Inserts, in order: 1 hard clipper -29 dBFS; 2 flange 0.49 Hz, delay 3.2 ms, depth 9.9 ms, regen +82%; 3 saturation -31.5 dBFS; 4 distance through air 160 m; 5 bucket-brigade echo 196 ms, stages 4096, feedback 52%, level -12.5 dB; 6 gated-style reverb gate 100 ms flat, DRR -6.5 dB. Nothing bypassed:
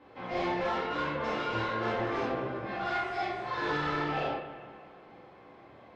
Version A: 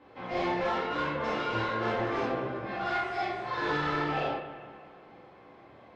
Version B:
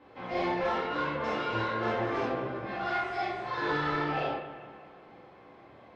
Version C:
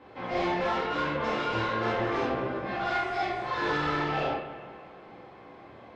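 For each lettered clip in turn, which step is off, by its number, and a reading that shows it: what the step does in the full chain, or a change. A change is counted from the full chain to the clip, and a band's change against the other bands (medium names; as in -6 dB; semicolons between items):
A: 3, distortion -23 dB; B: 1, distortion -10 dB; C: 2, momentary loudness spread change +11 LU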